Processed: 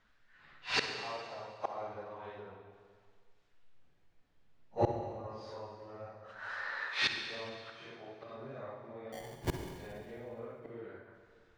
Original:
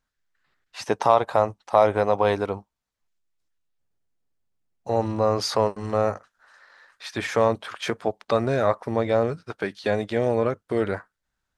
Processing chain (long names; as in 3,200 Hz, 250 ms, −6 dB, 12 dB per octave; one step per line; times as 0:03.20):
random phases in long frames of 200 ms
low-pass filter 2,800 Hz 12 dB per octave
high-shelf EQ 2,000 Hz +5.5 dB
in parallel at 0 dB: downward compressor 16 to 1, threshold −30 dBFS, peak gain reduction 18 dB
0:09.12–0:09.78: on the sum: sample-rate reduction 1,300 Hz, jitter 0%
gate with flip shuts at −22 dBFS, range −32 dB
on a send at −5 dB: convolution reverb RT60 1.8 s, pre-delay 46 ms
on the sum: level +5 dB